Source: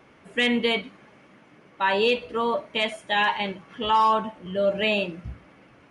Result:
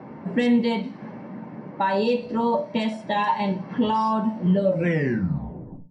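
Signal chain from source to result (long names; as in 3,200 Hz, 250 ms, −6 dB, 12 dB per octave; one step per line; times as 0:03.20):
turntable brake at the end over 1.29 s
low-pass that shuts in the quiet parts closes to 1,800 Hz, open at −20.5 dBFS
downward compressor 3 to 1, threshold −38 dBFS, peak gain reduction 15.5 dB
hum removal 298.7 Hz, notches 28
convolution reverb RT60 0.25 s, pre-delay 3 ms, DRR 4 dB
level +4.5 dB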